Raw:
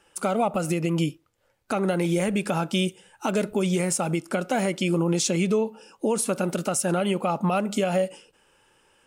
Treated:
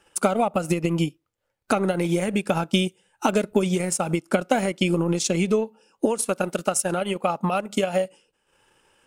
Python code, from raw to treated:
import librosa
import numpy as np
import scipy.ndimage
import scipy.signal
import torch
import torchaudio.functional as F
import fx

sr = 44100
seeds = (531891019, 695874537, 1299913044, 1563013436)

y = fx.low_shelf(x, sr, hz=280.0, db=-6.0, at=(6.05, 8.05))
y = fx.transient(y, sr, attack_db=7, sustain_db=-10)